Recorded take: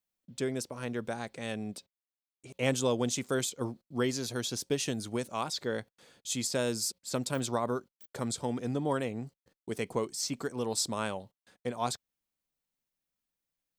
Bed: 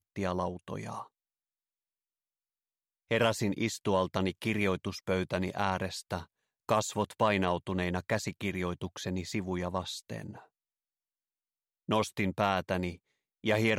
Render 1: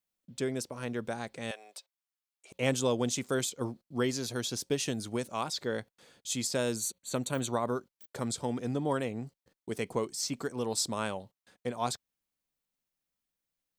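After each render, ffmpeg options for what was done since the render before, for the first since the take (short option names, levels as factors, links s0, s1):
-filter_complex "[0:a]asettb=1/sr,asplit=3[s0][s1][s2];[s0]atrim=end=1.514[s3];[s1]atrim=start=1.51:end=2.52,asetpts=PTS-STARTPTS,afade=t=in:d=0.004:c=qsin,afade=t=out:st=1.006:d=0.004:c=qsin,highpass=f=600:w=0.5412,highpass=f=600:w=1.3066[s4];[s2]atrim=start=2.516[s5];[s3][s4]acrossfade=d=0.004:c1=hsin:c2=qsin[s6];[s6][s5]acrossfade=d=0.004:c1=qsin:c2=hsin,asettb=1/sr,asplit=3[s7][s8][s9];[s7]atrim=end=6.764[s10];[s8]atrim=start=6.76:end=7.65,asetpts=PTS-STARTPTS,afade=t=in:d=0.004:c=qsin,afade=t=out:st=0.886:d=0.004:c=qsin,asuperstop=centerf=5100:order=12:qfactor=5.1[s11];[s9]atrim=start=7.646[s12];[s10][s11]acrossfade=d=0.004:c1=hsin:c2=qsin[s13];[s13][s12]acrossfade=d=0.004:c1=qsin:c2=hsin"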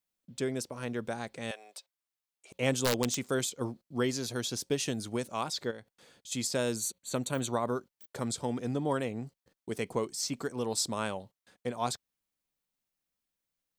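-filter_complex "[0:a]asettb=1/sr,asplit=3[s0][s1][s2];[s0]atrim=end=2.734[s3];[s1]atrim=start=2.73:end=3.18,asetpts=PTS-STARTPTS,afade=t=in:d=0.004:c=qsin,afade=t=out:st=0.446:d=0.004:c=qsin,aeval=exprs='(mod(9.44*val(0)+1,2)-1)/9.44':c=same[s4];[s2]atrim=start=3.176[s5];[s3][s4]acrossfade=d=0.004:c1=hsin:c2=qsin[s6];[s6][s5]acrossfade=d=0.004:c1=qsin:c2=hsin,asplit=3[s7][s8][s9];[s7]afade=t=out:st=5.7:d=0.02[s10];[s8]acompressor=threshold=0.00316:ratio=2:attack=3.2:release=140:knee=1:detection=peak,afade=t=in:st=5.7:d=0.02,afade=t=out:st=6.31:d=0.02[s11];[s9]afade=t=in:st=6.31:d=0.02[s12];[s10][s11][s12]amix=inputs=3:normalize=0"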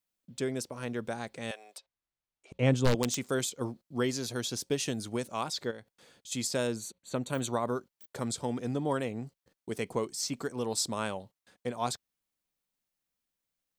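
-filter_complex "[0:a]asettb=1/sr,asplit=3[s0][s1][s2];[s0]atrim=end=1.784[s3];[s1]atrim=start=1.78:end=2.95,asetpts=PTS-STARTPTS,afade=t=in:d=0.004:c=qsin,afade=t=out:st=1.166:d=0.004:c=qsin,aemphasis=mode=reproduction:type=bsi[s4];[s2]atrim=start=2.946[s5];[s3][s4]acrossfade=d=0.004:c1=hsin:c2=qsin[s6];[s6][s5]acrossfade=d=0.004:c1=qsin:c2=hsin,asettb=1/sr,asplit=3[s7][s8][s9];[s7]atrim=end=6.674[s10];[s8]atrim=start=6.67:end=7.29,asetpts=PTS-STARTPTS,afade=t=in:d=0.004:c=qsin,afade=t=out:st=0.616:d=0.004:c=qsin,highshelf=f=4400:g=-11[s11];[s9]atrim=start=7.286[s12];[s10][s11]acrossfade=d=0.004:c1=hsin:c2=qsin[s13];[s13][s12]acrossfade=d=0.004:c1=qsin:c2=hsin"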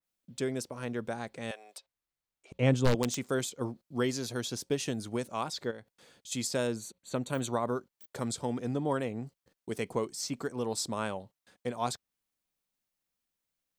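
-af "adynamicequalizer=threshold=0.00355:dfrequency=2300:dqfactor=0.7:tfrequency=2300:tqfactor=0.7:attack=5:release=100:ratio=0.375:range=2:mode=cutabove:tftype=highshelf"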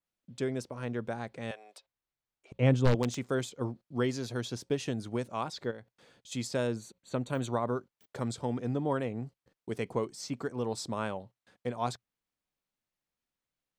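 -af "lowpass=f=3400:p=1,equalizer=f=120:t=o:w=0.27:g=3.5"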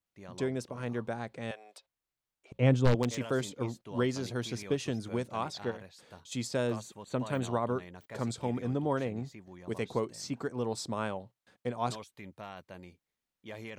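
-filter_complex "[1:a]volume=0.15[s0];[0:a][s0]amix=inputs=2:normalize=0"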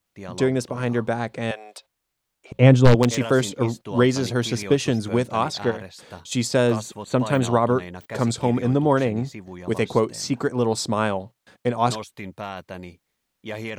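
-af "volume=3.98,alimiter=limit=0.891:level=0:latency=1"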